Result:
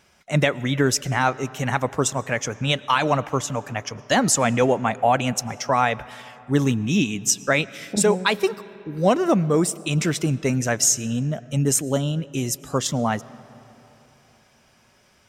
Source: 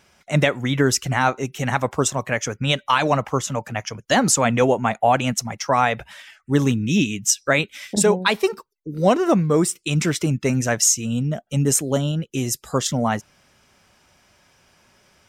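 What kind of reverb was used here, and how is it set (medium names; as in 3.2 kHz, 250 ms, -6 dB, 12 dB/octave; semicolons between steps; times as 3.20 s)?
algorithmic reverb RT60 3.6 s, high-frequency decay 0.5×, pre-delay 70 ms, DRR 19.5 dB; trim -1.5 dB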